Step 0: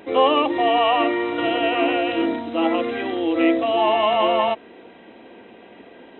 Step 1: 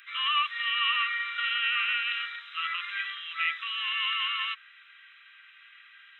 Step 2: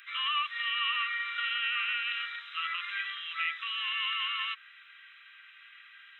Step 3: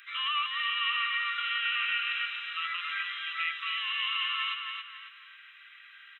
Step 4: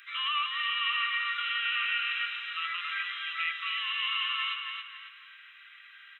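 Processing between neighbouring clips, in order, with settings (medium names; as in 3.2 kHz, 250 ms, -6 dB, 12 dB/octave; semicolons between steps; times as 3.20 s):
steep high-pass 1.2 kHz 96 dB/octave
compression 1.5:1, threshold -34 dBFS, peak gain reduction 4.5 dB
feedback delay 273 ms, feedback 34%, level -5 dB
reverberation RT60 1.2 s, pre-delay 6 ms, DRR 12.5 dB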